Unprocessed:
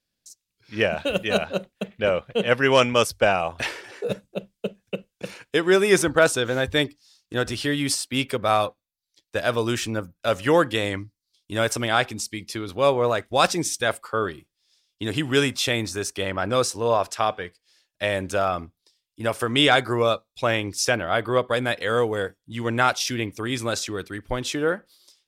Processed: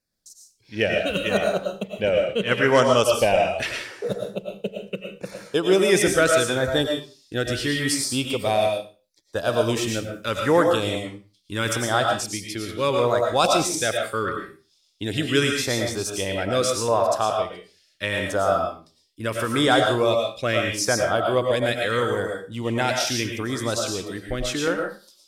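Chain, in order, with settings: LFO notch saw down 0.77 Hz 600–3300 Hz; on a send: reverb RT60 0.35 s, pre-delay 70 ms, DRR 1.5 dB

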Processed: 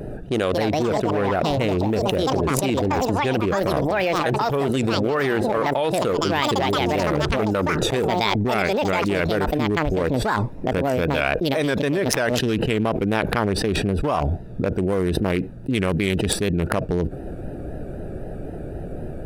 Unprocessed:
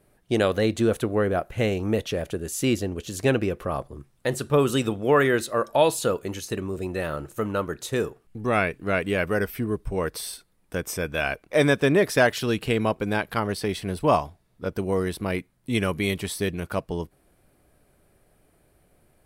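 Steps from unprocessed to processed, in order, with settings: Wiener smoothing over 41 samples; echoes that change speed 0.322 s, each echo +6 st, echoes 2, each echo -6 dB; vibrato 3.9 Hz 67 cents; low shelf 270 Hz -4 dB; fast leveller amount 100%; gain -5 dB

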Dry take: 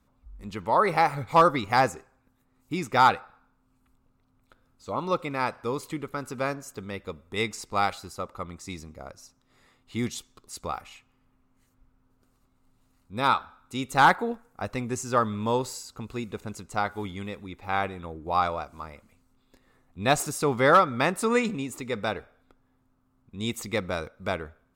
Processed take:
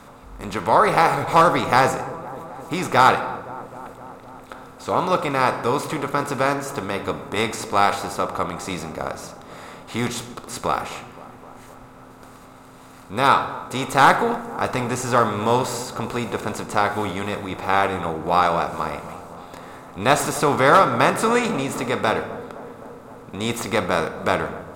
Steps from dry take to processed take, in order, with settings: per-bin compression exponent 0.6; dark delay 0.259 s, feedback 73%, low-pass 1000 Hz, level -15.5 dB; shoebox room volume 170 m³, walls mixed, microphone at 0.32 m; gain +1.5 dB

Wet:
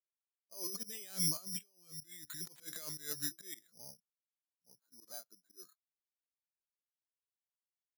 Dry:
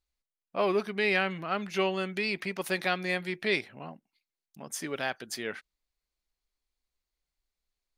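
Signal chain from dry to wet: repeated pitch sweeps -3 st, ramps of 0.838 s; Doppler pass-by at 1.78, 27 m/s, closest 2.3 m; LPF 6000 Hz; low-pass opened by the level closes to 940 Hz, open at -47 dBFS; HPF 120 Hz 24 dB/oct; negative-ratio compressor -57 dBFS, ratio -1; auto swell 0.12 s; careless resampling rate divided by 8×, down filtered, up zero stuff; spectral expander 1.5:1; gain +1.5 dB

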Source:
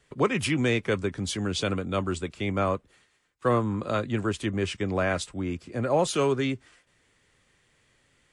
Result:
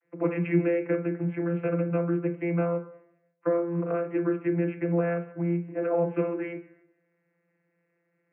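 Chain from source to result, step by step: G.711 law mismatch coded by A; steep low-pass 2400 Hz 72 dB/oct; bell 140 Hz -9 dB 1.6 oct; compressor, threshold -29 dBFS, peak gain reduction 9.5 dB; vocoder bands 32, saw 171 Hz; on a send: reverb RT60 0.75 s, pre-delay 6 ms, DRR 3.5 dB; on the sum: gain +5.5 dB

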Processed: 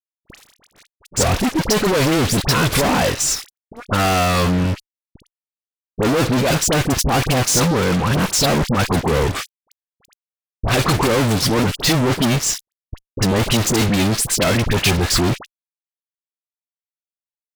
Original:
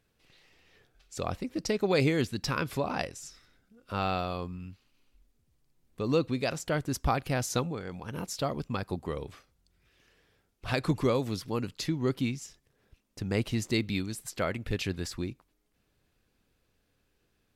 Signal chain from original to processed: LPF 11000 Hz 12 dB/oct; fuzz box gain 51 dB, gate -54 dBFS; dispersion highs, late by 51 ms, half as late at 1300 Hz; gain -2 dB

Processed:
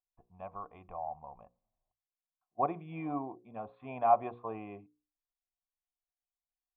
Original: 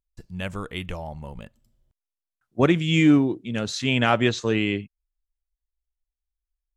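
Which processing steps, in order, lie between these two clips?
vocal tract filter a; notches 60/120/180/240/300/360/420/480/540 Hz; gain +5.5 dB

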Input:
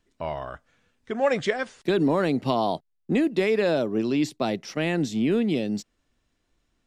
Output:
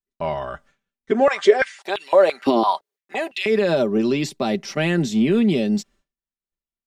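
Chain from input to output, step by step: expander -51 dBFS; comb 5.1 ms, depth 55%; maximiser +14 dB; 1.11–3.46 stepped high-pass 5.9 Hz 300–2700 Hz; gain -9.5 dB

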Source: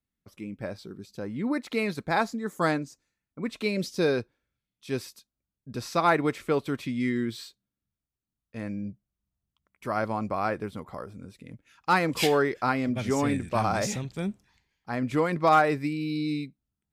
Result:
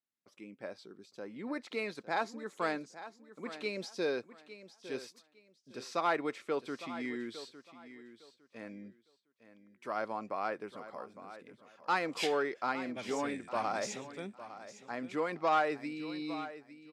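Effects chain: soft clip -13.5 dBFS, distortion -21 dB; BPF 320–7600 Hz; on a send: feedback echo 0.857 s, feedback 23%, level -14 dB; on the sum: gain -6.5 dB

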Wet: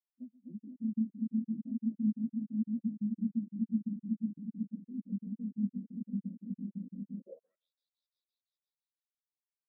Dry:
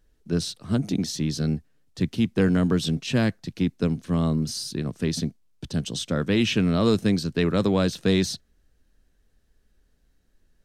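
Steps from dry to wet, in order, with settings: speed glide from 150% -> 70%; rippled Chebyshev high-pass 150 Hz, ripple 9 dB; swelling echo 0.124 s, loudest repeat 5, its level -4 dB; compressor, threshold -29 dBFS, peak gain reduction 12 dB; band-pass sweep 220 Hz -> 4500 Hz, 7.17–7.69; crackling interface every 0.17 s, samples 2048, zero, from 0.59; spectral expander 2.5:1; gain +3 dB

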